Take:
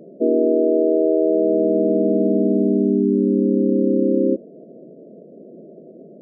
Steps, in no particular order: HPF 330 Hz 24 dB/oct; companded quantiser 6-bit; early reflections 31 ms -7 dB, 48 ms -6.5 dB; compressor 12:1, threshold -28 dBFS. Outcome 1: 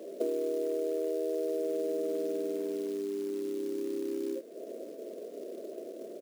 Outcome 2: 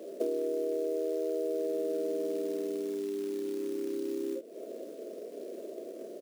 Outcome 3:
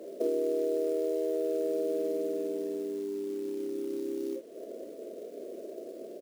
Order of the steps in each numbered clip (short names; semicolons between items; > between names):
early reflections > compressor > companded quantiser > HPF; companded quantiser > early reflections > compressor > HPF; compressor > HPF > companded quantiser > early reflections